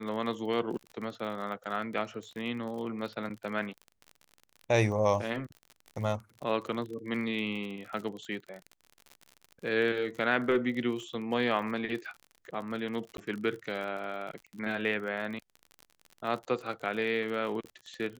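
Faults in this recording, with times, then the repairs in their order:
crackle 44/s -38 dBFS
13.17–13.18 gap 12 ms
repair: de-click; interpolate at 13.17, 12 ms

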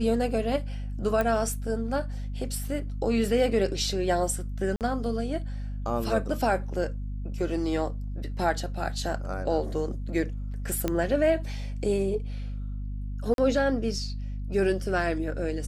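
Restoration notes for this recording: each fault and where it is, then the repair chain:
hum 50 Hz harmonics 5 -33 dBFS
1.21 pop -14 dBFS
4.76–4.81 gap 48 ms
10.88 pop -13 dBFS
13.34–13.38 gap 42 ms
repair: de-click; de-hum 50 Hz, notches 5; interpolate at 4.76, 48 ms; interpolate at 13.34, 42 ms

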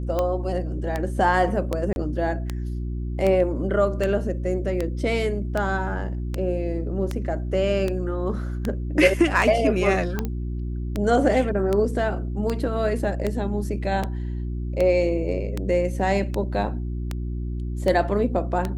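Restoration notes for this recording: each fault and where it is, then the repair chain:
hum 60 Hz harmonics 6 -28 dBFS
tick 78 rpm -12 dBFS
1.93–1.96 gap 31 ms
10.25 pop -16 dBFS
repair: de-click; de-hum 60 Hz, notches 6; interpolate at 1.93, 31 ms

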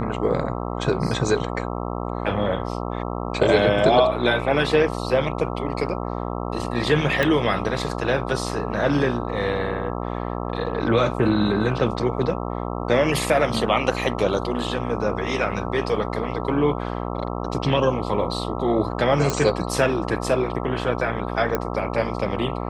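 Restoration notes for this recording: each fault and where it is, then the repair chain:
buzz 60 Hz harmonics 22 -28 dBFS
7.23 pop -8 dBFS
19.3 pop
21.55 pop -9 dBFS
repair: de-click; de-hum 60 Hz, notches 22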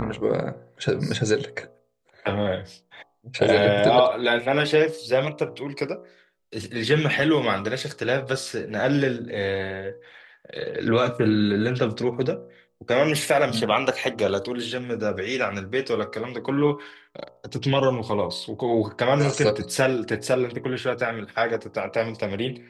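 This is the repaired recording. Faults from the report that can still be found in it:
7.23 pop

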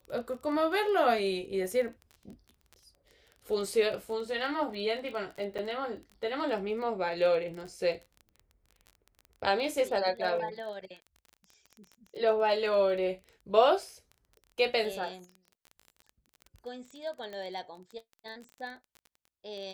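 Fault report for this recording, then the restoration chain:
crackle 23/s -39 dBFS
5.58–5.59 gap 7.7 ms
17.33 pop -29 dBFS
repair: de-click; interpolate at 5.58, 7.7 ms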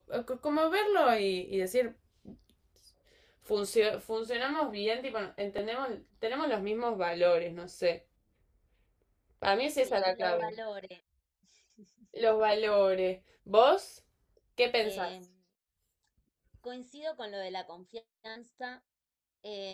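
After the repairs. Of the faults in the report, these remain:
none

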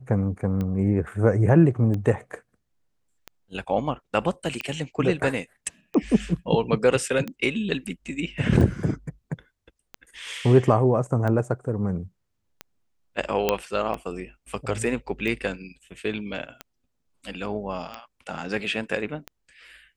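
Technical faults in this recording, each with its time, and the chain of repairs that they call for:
tick 45 rpm -18 dBFS
13.49 pop -6 dBFS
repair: de-click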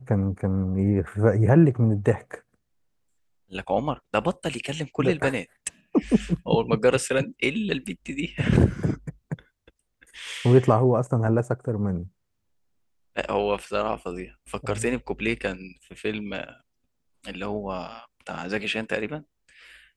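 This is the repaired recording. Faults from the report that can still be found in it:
none

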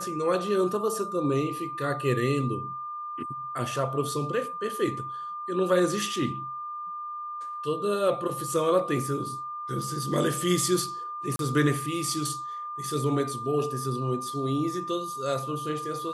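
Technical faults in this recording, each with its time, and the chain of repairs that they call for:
tone 1200 Hz -33 dBFS
11.36–11.39 gap 32 ms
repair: notch 1200 Hz, Q 30; interpolate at 11.36, 32 ms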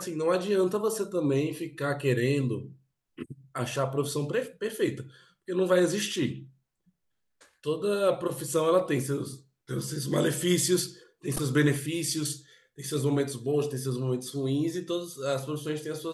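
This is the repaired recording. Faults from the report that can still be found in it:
none

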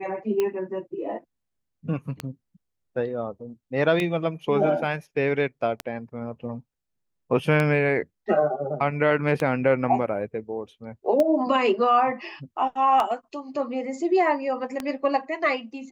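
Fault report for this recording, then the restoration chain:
tick 33 1/3 rpm -12 dBFS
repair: de-click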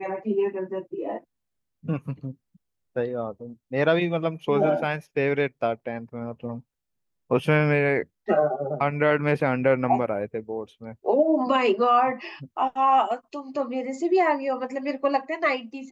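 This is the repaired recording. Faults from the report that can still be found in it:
none

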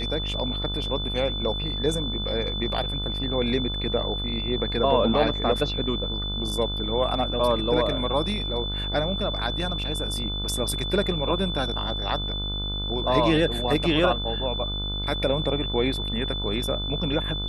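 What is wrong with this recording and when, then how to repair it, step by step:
buzz 50 Hz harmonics 30 -31 dBFS
tone 3500 Hz -30 dBFS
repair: de-hum 50 Hz, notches 30; notch 3500 Hz, Q 30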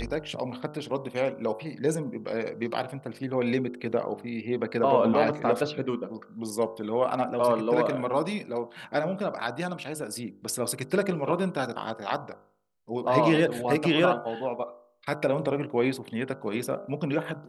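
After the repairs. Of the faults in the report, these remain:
none

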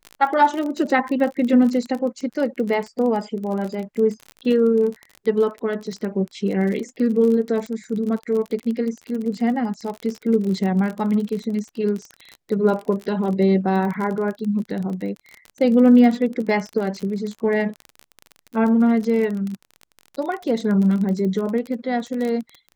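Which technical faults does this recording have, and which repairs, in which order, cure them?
crackle 31/s -26 dBFS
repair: de-click

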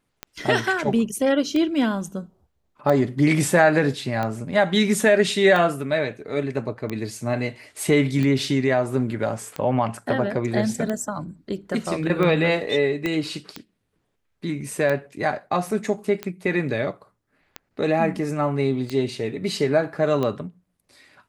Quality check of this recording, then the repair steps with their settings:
tick 45 rpm -14 dBFS
13.06 pop -12 dBFS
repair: de-click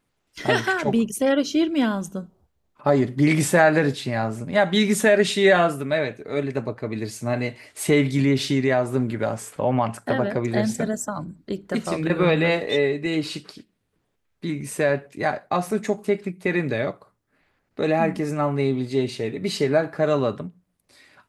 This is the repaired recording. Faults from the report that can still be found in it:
13.06 pop

